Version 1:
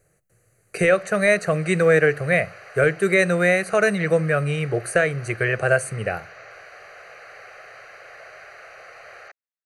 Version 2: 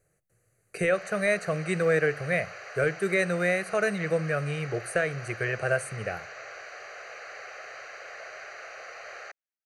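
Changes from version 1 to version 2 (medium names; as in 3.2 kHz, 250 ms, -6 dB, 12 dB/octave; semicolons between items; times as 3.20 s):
speech -7.5 dB; background: remove distance through air 87 m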